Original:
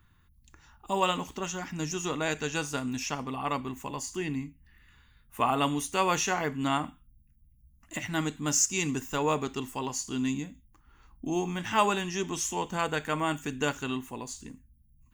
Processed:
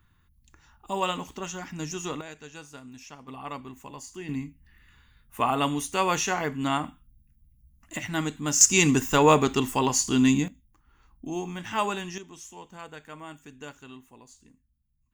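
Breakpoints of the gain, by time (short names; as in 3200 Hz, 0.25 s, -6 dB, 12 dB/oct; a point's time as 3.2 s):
-1 dB
from 2.21 s -12.5 dB
from 3.28 s -6 dB
from 4.29 s +1.5 dB
from 8.61 s +9.5 dB
from 10.48 s -2.5 dB
from 12.18 s -13 dB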